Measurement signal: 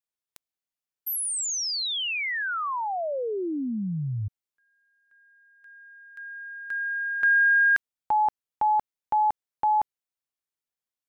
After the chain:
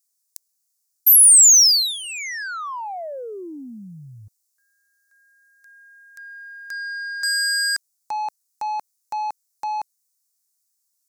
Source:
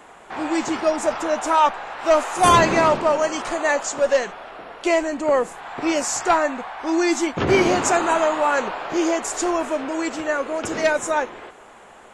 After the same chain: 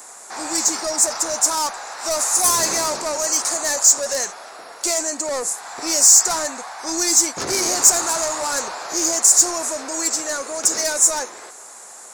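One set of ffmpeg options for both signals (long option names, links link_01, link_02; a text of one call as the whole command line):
ffmpeg -i in.wav -filter_complex "[0:a]asplit=2[link_01][link_02];[link_02]highpass=frequency=720:poles=1,volume=20dB,asoftclip=type=tanh:threshold=-4.5dB[link_03];[link_01][link_03]amix=inputs=2:normalize=0,lowpass=frequency=2800:poles=1,volume=-6dB,aexciter=amount=14.6:drive=8.3:freq=4800,volume=-12.5dB" out.wav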